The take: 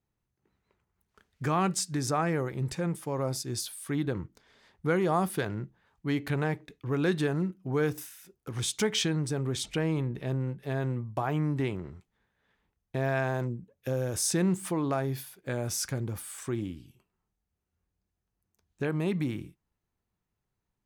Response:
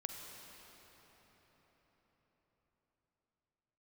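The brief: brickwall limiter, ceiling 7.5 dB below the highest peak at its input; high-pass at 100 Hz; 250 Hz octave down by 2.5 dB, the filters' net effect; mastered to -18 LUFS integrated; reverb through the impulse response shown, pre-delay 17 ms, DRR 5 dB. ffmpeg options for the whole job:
-filter_complex "[0:a]highpass=100,equalizer=f=250:t=o:g=-3.5,alimiter=limit=0.0794:level=0:latency=1,asplit=2[s0][s1];[1:a]atrim=start_sample=2205,adelay=17[s2];[s1][s2]afir=irnorm=-1:irlink=0,volume=0.631[s3];[s0][s3]amix=inputs=2:normalize=0,volume=5.62"

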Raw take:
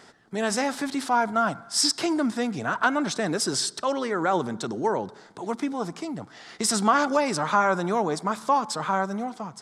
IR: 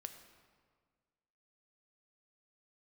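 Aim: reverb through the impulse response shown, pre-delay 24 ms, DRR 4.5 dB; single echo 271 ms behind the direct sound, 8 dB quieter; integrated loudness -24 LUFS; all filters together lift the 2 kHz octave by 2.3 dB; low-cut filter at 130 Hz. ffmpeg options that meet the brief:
-filter_complex "[0:a]highpass=130,equalizer=f=2000:t=o:g=3.5,aecho=1:1:271:0.398,asplit=2[s0][s1];[1:a]atrim=start_sample=2205,adelay=24[s2];[s1][s2]afir=irnorm=-1:irlink=0,volume=1[s3];[s0][s3]amix=inputs=2:normalize=0,volume=0.891"

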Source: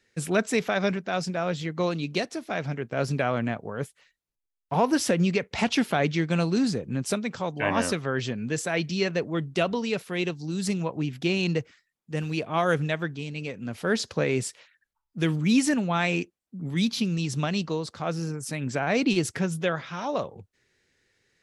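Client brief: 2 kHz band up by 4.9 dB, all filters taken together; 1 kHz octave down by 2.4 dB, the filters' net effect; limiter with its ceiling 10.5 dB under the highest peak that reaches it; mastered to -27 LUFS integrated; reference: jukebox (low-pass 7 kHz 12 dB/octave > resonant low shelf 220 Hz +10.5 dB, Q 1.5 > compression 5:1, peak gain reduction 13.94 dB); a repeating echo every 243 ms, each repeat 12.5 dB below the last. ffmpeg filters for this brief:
-af "equalizer=f=1000:t=o:g=-5,equalizer=f=2000:t=o:g=8,alimiter=limit=0.119:level=0:latency=1,lowpass=7000,lowshelf=f=220:t=q:w=1.5:g=10.5,aecho=1:1:243|486|729:0.237|0.0569|0.0137,acompressor=threshold=0.0398:ratio=5,volume=1.68"

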